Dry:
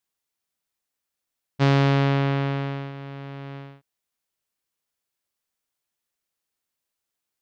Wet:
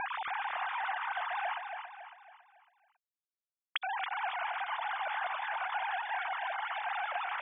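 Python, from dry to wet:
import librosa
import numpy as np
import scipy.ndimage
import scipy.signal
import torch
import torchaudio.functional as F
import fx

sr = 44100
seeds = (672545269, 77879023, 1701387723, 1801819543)

y = fx.sine_speech(x, sr)
y = scipy.signal.sosfilt(scipy.signal.butter(2, 1400.0, 'lowpass', fs=sr, output='sos'), y)
y = fx.echo_feedback(y, sr, ms=277, feedback_pct=43, wet_db=-6.5)
y = y * librosa.db_to_amplitude(-5.0)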